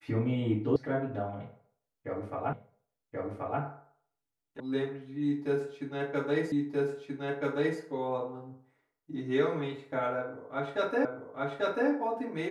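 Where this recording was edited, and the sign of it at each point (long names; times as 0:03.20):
0:00.76: cut off before it has died away
0:02.53: the same again, the last 1.08 s
0:04.60: cut off before it has died away
0:06.52: the same again, the last 1.28 s
0:11.05: the same again, the last 0.84 s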